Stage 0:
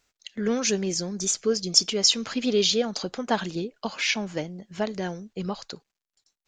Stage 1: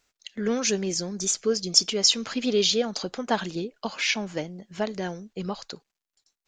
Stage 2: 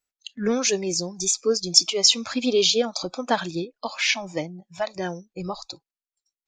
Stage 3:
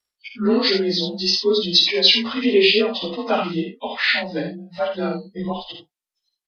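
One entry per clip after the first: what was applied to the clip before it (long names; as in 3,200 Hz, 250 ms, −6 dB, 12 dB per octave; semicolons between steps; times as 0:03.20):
parametric band 83 Hz −3 dB 2.1 octaves
noise reduction from a noise print of the clip's start 20 dB; level +3 dB
partials spread apart or drawn together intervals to 90%; ambience of single reflections 52 ms −6.5 dB, 78 ms −8.5 dB; level +5 dB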